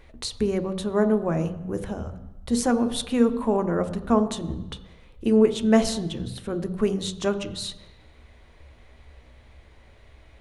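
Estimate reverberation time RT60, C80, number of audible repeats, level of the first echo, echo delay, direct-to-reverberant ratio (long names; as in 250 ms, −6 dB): 1.0 s, 15.0 dB, no echo audible, no echo audible, no echo audible, 8.5 dB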